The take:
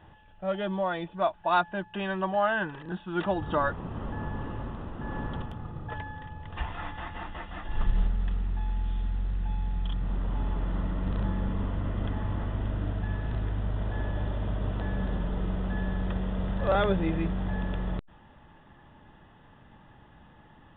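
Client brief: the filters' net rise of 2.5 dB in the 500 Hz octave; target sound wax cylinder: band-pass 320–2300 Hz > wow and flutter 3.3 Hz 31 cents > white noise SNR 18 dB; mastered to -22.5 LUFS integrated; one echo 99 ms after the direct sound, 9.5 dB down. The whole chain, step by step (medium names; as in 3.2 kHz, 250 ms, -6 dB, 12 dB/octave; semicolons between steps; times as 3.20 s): band-pass 320–2300 Hz; peaking EQ 500 Hz +4 dB; delay 99 ms -9.5 dB; wow and flutter 3.3 Hz 31 cents; white noise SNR 18 dB; trim +10.5 dB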